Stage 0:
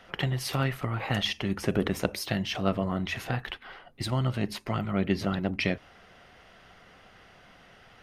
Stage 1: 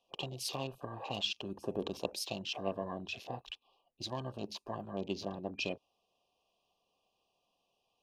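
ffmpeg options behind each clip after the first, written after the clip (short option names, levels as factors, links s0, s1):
-af "afftfilt=real='re*(1-between(b*sr/4096,1200,2400))':imag='im*(1-between(b*sr/4096,1200,2400))':win_size=4096:overlap=0.75,bass=f=250:g=-12,treble=f=4000:g=4,afwtdn=0.00794,volume=0.501"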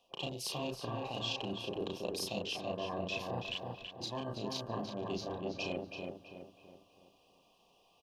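-filter_complex "[0:a]asplit=2[s0][s1];[s1]adelay=34,volume=0.631[s2];[s0][s2]amix=inputs=2:normalize=0,areverse,acompressor=threshold=0.00562:ratio=6,areverse,asplit=2[s3][s4];[s4]adelay=328,lowpass=f=2600:p=1,volume=0.668,asplit=2[s5][s6];[s6]adelay=328,lowpass=f=2600:p=1,volume=0.44,asplit=2[s7][s8];[s8]adelay=328,lowpass=f=2600:p=1,volume=0.44,asplit=2[s9][s10];[s10]adelay=328,lowpass=f=2600:p=1,volume=0.44,asplit=2[s11][s12];[s12]adelay=328,lowpass=f=2600:p=1,volume=0.44,asplit=2[s13][s14];[s14]adelay=328,lowpass=f=2600:p=1,volume=0.44[s15];[s3][s5][s7][s9][s11][s13][s15]amix=inputs=7:normalize=0,volume=2.66"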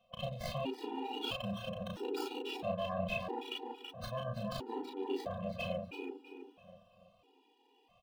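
-filter_complex "[0:a]acrossover=split=3800[s0][s1];[s1]acrusher=samples=25:mix=1:aa=0.000001:lfo=1:lforange=15:lforate=0.42[s2];[s0][s2]amix=inputs=2:normalize=0,afftfilt=real='re*gt(sin(2*PI*0.76*pts/sr)*(1-2*mod(floor(b*sr/1024/250),2)),0)':imag='im*gt(sin(2*PI*0.76*pts/sr)*(1-2*mod(floor(b*sr/1024/250),2)),0)':win_size=1024:overlap=0.75,volume=1.5"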